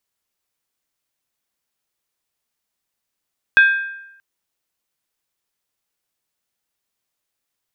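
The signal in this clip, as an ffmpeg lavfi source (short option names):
-f lavfi -i "aevalsrc='0.531*pow(10,-3*t/0.86)*sin(2*PI*1590*t)+0.168*pow(10,-3*t/0.681)*sin(2*PI*2534.5*t)+0.0531*pow(10,-3*t/0.588)*sin(2*PI*3396.2*t)+0.0168*pow(10,-3*t/0.568)*sin(2*PI*3650.6*t)+0.00531*pow(10,-3*t/0.528)*sin(2*PI*4218.3*t)':d=0.63:s=44100"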